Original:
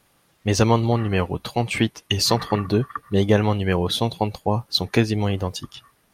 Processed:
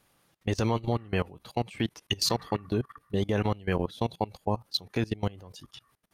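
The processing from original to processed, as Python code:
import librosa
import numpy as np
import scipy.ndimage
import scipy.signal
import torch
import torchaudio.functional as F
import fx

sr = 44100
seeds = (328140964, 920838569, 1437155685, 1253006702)

y = fx.level_steps(x, sr, step_db=21)
y = y * 10.0 ** (-4.5 / 20.0)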